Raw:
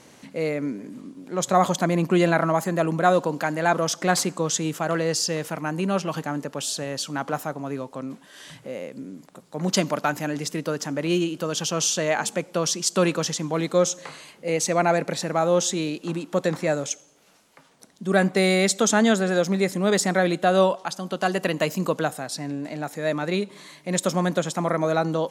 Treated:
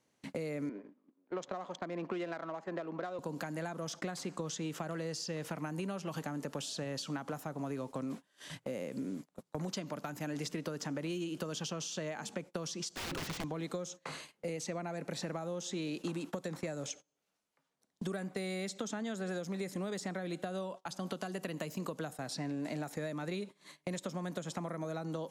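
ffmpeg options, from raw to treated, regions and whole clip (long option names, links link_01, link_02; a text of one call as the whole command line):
ffmpeg -i in.wav -filter_complex "[0:a]asettb=1/sr,asplit=3[link_01][link_02][link_03];[link_01]atrim=end=0.694[link_04];[link_02]atrim=start=0.69:end=3.19,asetpts=PTS-STARTPTS,afade=type=in:duration=0.004:curve=qsin,afade=type=out:start_time=2.496:duration=0.004:curve=qsin,adynamicsmooth=sensitivity=1.5:basefreq=1900,highpass=390,lowpass=6200[link_05];[link_03]atrim=start=3.186[link_06];[link_04][link_05]acrossfade=duration=0.004:curve1=hsin:curve2=qsin[link_07];[link_07][link_06]acrossfade=duration=0.004:curve1=qsin:curve2=hsin,asettb=1/sr,asplit=3[link_08][link_09][link_10];[link_08]atrim=end=12.914[link_11];[link_09]atrim=start=12.91:end=13.44,asetpts=PTS-STARTPTS,afade=type=in:duration=0.004:curve=qsin,afade=type=out:start_time=0.526:duration=0.004:curve=qsin,highpass=frequency=110:width=0.5412,highpass=frequency=110:width=1.3066,bandreject=frequency=50:width_type=h:width=6,bandreject=frequency=100:width_type=h:width=6,bandreject=frequency=150:width_type=h:width=6,bandreject=frequency=200:width_type=h:width=6,bandreject=frequency=250:width_type=h:width=6,bandreject=frequency=300:width_type=h:width=6,bandreject=frequency=350:width_type=h:width=6,aeval=exprs='(mod(16.8*val(0)+1,2)-1)/16.8':channel_layout=same[link_12];[link_10]atrim=start=13.436[link_13];[link_11][link_12]acrossfade=duration=0.004:curve1=hsin:curve2=qsin[link_14];[link_14][link_13]acrossfade=duration=0.004:curve1=qsin:curve2=hsin,acompressor=threshold=-31dB:ratio=12,agate=range=-27dB:threshold=-42dB:ratio=16:detection=peak,acrossover=split=320|5900[link_15][link_16][link_17];[link_15]acompressor=threshold=-40dB:ratio=4[link_18];[link_16]acompressor=threshold=-41dB:ratio=4[link_19];[link_17]acompressor=threshold=-54dB:ratio=4[link_20];[link_18][link_19][link_20]amix=inputs=3:normalize=0,volume=1dB" out.wav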